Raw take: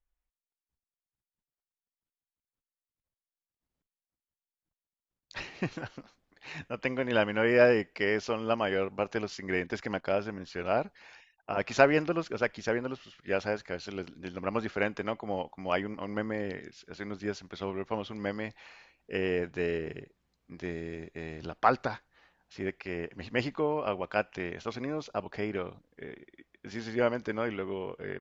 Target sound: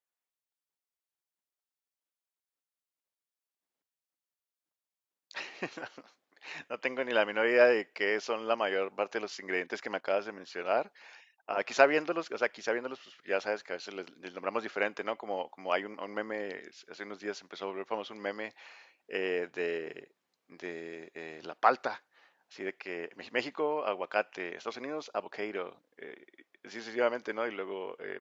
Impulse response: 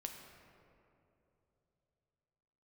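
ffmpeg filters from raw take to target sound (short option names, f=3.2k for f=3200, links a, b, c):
-af "highpass=380"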